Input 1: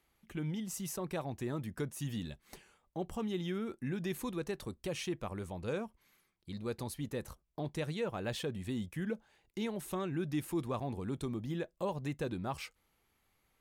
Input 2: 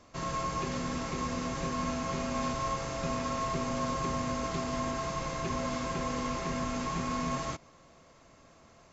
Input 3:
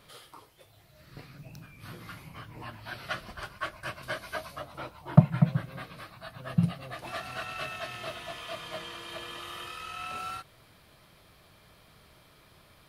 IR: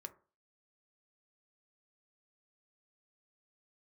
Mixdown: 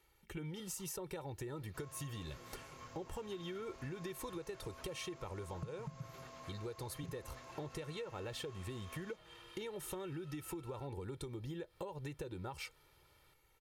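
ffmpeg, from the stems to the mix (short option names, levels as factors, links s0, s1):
-filter_complex "[0:a]volume=1.12[s0];[1:a]highpass=400,adelay=1600,volume=0.119[s1];[2:a]acrossover=split=220[s2][s3];[s3]acompressor=threshold=0.00708:ratio=6[s4];[s2][s4]amix=inputs=2:normalize=0,adelay=450,volume=0.2,asplit=2[s5][s6];[s6]volume=0.316[s7];[s0][s5]amix=inputs=2:normalize=0,aecho=1:1:2.2:0.71,acompressor=threshold=0.02:ratio=6,volume=1[s8];[3:a]atrim=start_sample=2205[s9];[s7][s9]afir=irnorm=-1:irlink=0[s10];[s1][s8][s10]amix=inputs=3:normalize=0,acompressor=threshold=0.00891:ratio=6"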